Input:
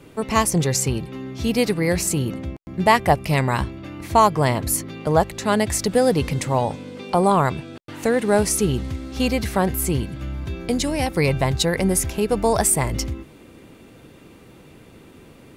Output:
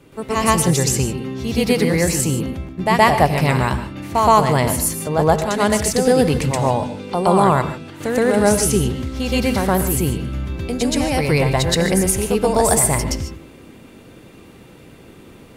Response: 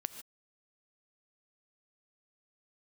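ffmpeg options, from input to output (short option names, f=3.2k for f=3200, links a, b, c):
-filter_complex "[0:a]asplit=2[a][b];[1:a]atrim=start_sample=2205,adelay=122[c];[b][c]afir=irnorm=-1:irlink=0,volume=6.5dB[d];[a][d]amix=inputs=2:normalize=0,volume=-3dB"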